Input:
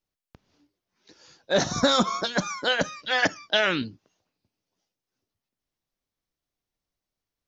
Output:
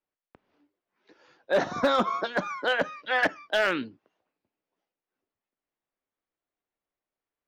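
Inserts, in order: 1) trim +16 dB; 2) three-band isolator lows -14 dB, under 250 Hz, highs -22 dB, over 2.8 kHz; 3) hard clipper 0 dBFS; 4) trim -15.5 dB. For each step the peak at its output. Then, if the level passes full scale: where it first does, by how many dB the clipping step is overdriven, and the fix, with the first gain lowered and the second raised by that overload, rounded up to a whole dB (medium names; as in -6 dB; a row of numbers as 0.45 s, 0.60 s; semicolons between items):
+6.5 dBFS, +6.5 dBFS, 0.0 dBFS, -15.5 dBFS; step 1, 6.5 dB; step 1 +9 dB, step 4 -8.5 dB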